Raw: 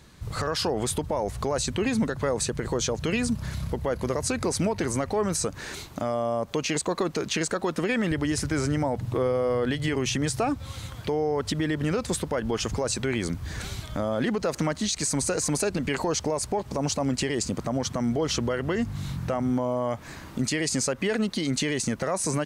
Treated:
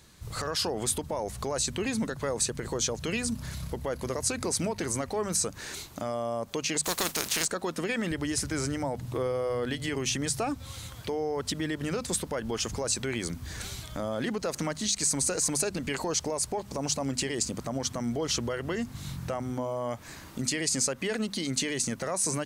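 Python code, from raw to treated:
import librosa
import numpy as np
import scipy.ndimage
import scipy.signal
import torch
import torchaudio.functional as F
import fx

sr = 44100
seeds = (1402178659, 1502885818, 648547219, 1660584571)

y = fx.spec_flatten(x, sr, power=0.42, at=(6.83, 7.44), fade=0.02)
y = fx.high_shelf(y, sr, hz=4200.0, db=8.5)
y = fx.hum_notches(y, sr, base_hz=50, count=5)
y = y * librosa.db_to_amplitude(-5.0)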